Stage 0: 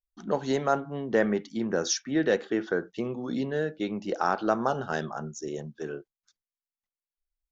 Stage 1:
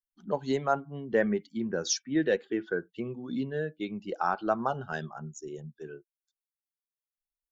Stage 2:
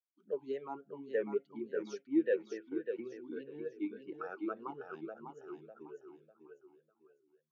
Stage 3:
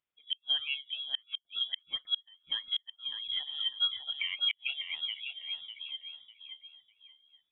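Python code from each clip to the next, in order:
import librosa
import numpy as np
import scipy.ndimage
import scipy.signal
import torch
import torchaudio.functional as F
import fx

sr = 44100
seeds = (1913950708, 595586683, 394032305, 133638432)

y1 = fx.bin_expand(x, sr, power=1.5)
y2 = fx.echo_feedback(y1, sr, ms=600, feedback_pct=32, wet_db=-6.5)
y2 = fx.vowel_sweep(y2, sr, vowels='e-u', hz=3.5)
y3 = fx.gate_flip(y2, sr, shuts_db=-28.0, range_db=-36)
y3 = fx.freq_invert(y3, sr, carrier_hz=3600)
y3 = y3 * librosa.db_to_amplitude(8.0)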